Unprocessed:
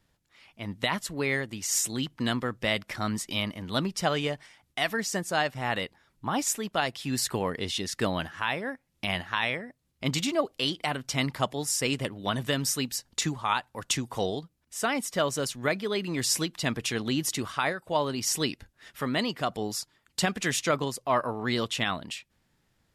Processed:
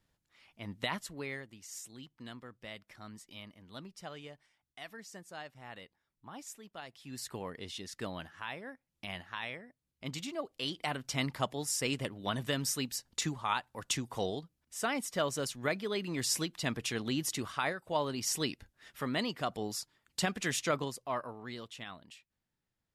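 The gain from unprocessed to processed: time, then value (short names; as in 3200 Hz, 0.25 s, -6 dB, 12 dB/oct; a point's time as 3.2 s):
0.92 s -7 dB
1.72 s -19 dB
6.87 s -19 dB
7.34 s -12 dB
10.38 s -12 dB
10.87 s -5.5 dB
20.77 s -5.5 dB
21.63 s -17 dB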